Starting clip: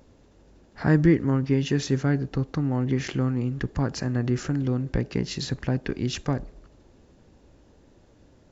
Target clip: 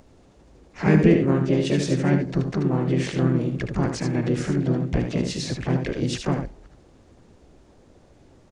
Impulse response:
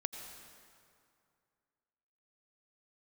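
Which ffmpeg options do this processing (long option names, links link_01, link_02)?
-filter_complex "[0:a]aecho=1:1:77:0.473,acrossover=split=6900[link_01][link_02];[link_02]acompressor=threshold=-52dB:ratio=4:attack=1:release=60[link_03];[link_01][link_03]amix=inputs=2:normalize=0,asplit=4[link_04][link_05][link_06][link_07];[link_05]asetrate=55563,aresample=44100,atempo=0.793701,volume=-6dB[link_08];[link_06]asetrate=58866,aresample=44100,atempo=0.749154,volume=-7dB[link_09];[link_07]asetrate=66075,aresample=44100,atempo=0.66742,volume=-12dB[link_10];[link_04][link_08][link_09][link_10]amix=inputs=4:normalize=0"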